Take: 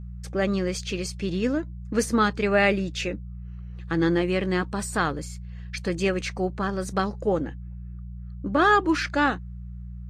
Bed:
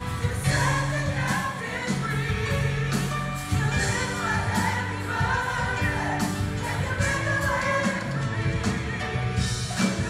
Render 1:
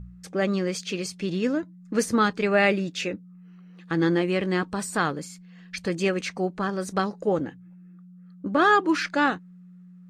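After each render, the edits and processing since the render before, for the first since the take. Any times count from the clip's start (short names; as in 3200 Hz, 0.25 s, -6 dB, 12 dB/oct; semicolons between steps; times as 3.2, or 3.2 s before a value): de-hum 60 Hz, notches 2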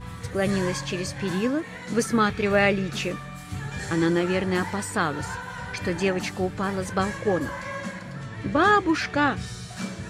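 add bed -9 dB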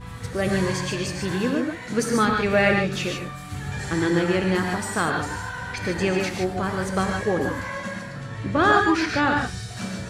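non-linear reverb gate 0.17 s rising, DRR 2 dB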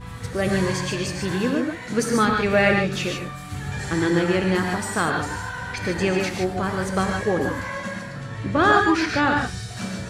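gain +1 dB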